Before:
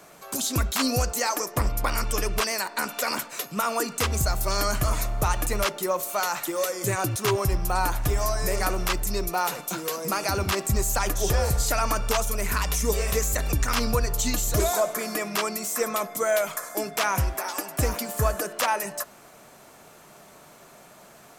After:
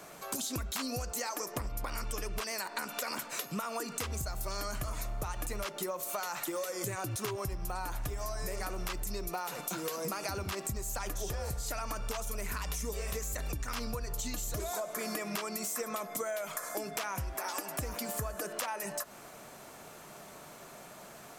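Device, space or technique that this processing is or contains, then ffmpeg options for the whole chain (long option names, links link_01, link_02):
serial compression, peaks first: -af "acompressor=threshold=-30dB:ratio=6,acompressor=threshold=-34dB:ratio=2.5"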